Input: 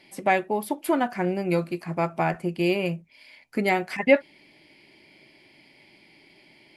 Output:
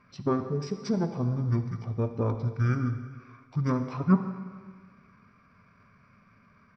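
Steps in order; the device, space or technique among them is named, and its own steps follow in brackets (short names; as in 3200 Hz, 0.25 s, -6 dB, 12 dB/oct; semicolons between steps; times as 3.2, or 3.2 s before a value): monster voice (pitch shift -6.5 st; formant shift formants -5.5 st; low shelf 110 Hz +9 dB; reverb RT60 1.7 s, pre-delay 48 ms, DRR 8.5 dB); gain -5.5 dB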